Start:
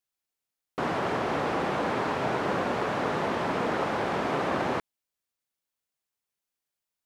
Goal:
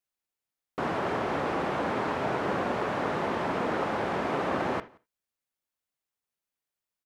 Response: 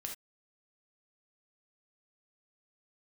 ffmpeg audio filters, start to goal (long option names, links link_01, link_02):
-filter_complex "[0:a]asplit=2[link_01][link_02];[link_02]adelay=174.9,volume=-27dB,highshelf=frequency=4000:gain=-3.94[link_03];[link_01][link_03]amix=inputs=2:normalize=0,asplit=2[link_04][link_05];[1:a]atrim=start_sample=2205,lowpass=3400[link_06];[link_05][link_06]afir=irnorm=-1:irlink=0,volume=-6dB[link_07];[link_04][link_07]amix=inputs=2:normalize=0,volume=-3.5dB"